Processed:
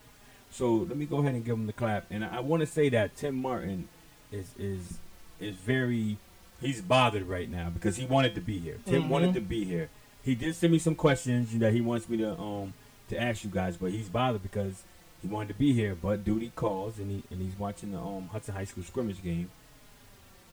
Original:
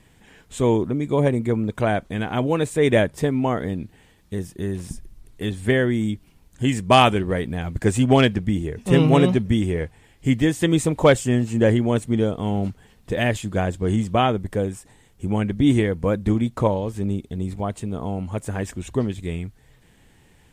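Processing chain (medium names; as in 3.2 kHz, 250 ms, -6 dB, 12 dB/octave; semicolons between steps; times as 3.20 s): feedback comb 170 Hz, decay 0.24 s, harmonics all, mix 60%; added noise pink -53 dBFS; endless flanger 4.3 ms -0.71 Hz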